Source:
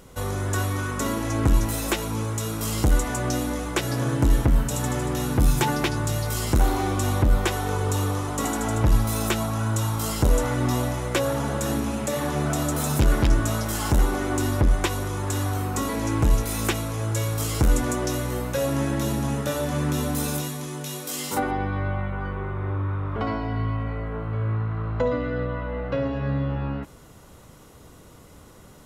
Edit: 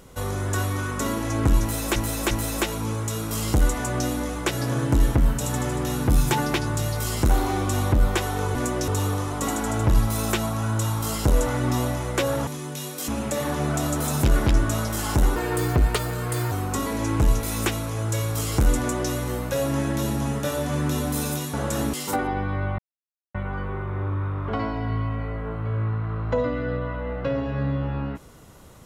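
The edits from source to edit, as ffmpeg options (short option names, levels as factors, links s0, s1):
-filter_complex "[0:a]asplit=12[s0][s1][s2][s3][s4][s5][s6][s7][s8][s9][s10][s11];[s0]atrim=end=1.962[s12];[s1]atrim=start=1.608:end=1.962[s13];[s2]atrim=start=1.608:end=7.852[s14];[s3]atrim=start=17.808:end=18.142[s15];[s4]atrim=start=7.848:end=11.442[s16];[s5]atrim=start=20.558:end=21.172[s17];[s6]atrim=start=11.838:end=14.124[s18];[s7]atrim=start=14.12:end=15.54,asetpts=PTS-STARTPTS,asetrate=54243,aresample=44100,atrim=end_sample=50912,asetpts=PTS-STARTPTS[s19];[s8]atrim=start=15.536:end=20.562[s20];[s9]atrim=start=11.438:end=11.842[s21];[s10]atrim=start=21.168:end=22.02,asetpts=PTS-STARTPTS,afade=t=out:st=0.848:d=0.004:c=hsin,apad=pad_dur=0.56[s22];[s11]atrim=start=22.02,asetpts=PTS-STARTPTS,afade=t=in:d=0.004:c=hsin[s23];[s12][s13]acrossfade=d=0.004:c1=hsin:c2=hsin[s24];[s24][s14]acrossfade=d=0.004:c1=hsin:c2=hsin[s25];[s25][s15]acrossfade=d=0.004:c1=hsin:c2=hsin[s26];[s26][s16]acrossfade=d=0.004:c1=hsin:c2=hsin[s27];[s27][s17]acrossfade=d=0.004:c1=hsin:c2=hsin[s28];[s28][s18]acrossfade=d=0.004:c1=hsin:c2=hsin[s29];[s29][s19]acrossfade=d=0.004:c1=hsin:c2=hsin[s30];[s30][s20]acrossfade=d=0.004:c1=hsin:c2=hsin[s31];[s31][s21]acrossfade=d=0.004:c1=hsin:c2=hsin[s32];[s22][s23]concat=n=2:v=0:a=1[s33];[s32][s33]acrossfade=d=0.004:c1=hsin:c2=hsin"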